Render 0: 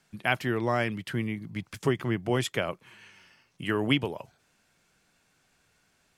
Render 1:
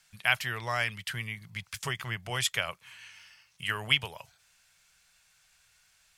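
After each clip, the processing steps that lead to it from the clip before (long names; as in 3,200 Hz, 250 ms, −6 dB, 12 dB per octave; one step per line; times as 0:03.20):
guitar amp tone stack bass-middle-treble 10-0-10
level +7 dB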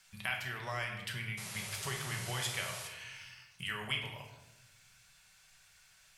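downward compressor 2 to 1, threshold −44 dBFS, peak gain reduction 14 dB
sound drawn into the spectrogram noise, 0:01.37–0:02.88, 350–12,000 Hz −47 dBFS
rectangular room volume 410 cubic metres, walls mixed, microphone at 1.1 metres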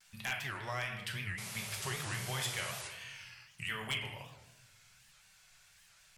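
pitch vibrato 1.4 Hz 74 cents
wave folding −26.5 dBFS
wow of a warped record 78 rpm, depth 250 cents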